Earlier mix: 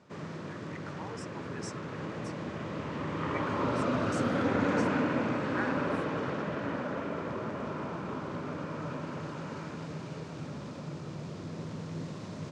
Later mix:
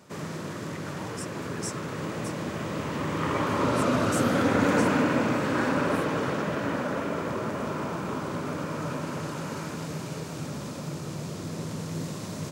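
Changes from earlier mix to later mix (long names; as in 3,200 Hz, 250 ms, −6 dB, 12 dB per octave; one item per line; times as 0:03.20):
background +5.0 dB
master: remove high-frequency loss of the air 120 metres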